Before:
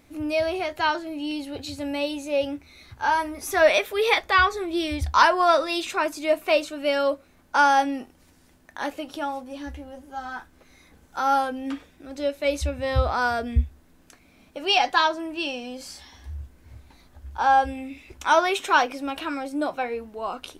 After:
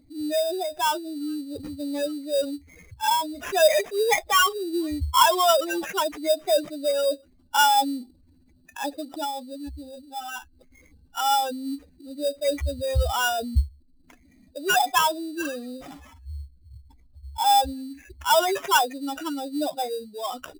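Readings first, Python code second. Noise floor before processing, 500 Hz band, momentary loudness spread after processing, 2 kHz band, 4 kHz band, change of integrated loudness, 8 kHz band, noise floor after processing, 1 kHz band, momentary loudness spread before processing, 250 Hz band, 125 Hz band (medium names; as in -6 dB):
-57 dBFS, 0.0 dB, 18 LU, -3.5 dB, +2.0 dB, -0.5 dB, +8.5 dB, -58 dBFS, -0.5 dB, 18 LU, -0.5 dB, -0.5 dB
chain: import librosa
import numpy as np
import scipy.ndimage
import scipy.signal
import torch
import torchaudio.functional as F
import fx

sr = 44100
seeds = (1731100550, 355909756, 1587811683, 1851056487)

y = fx.spec_expand(x, sr, power=2.5)
y = fx.sample_hold(y, sr, seeds[0], rate_hz=4300.0, jitter_pct=0)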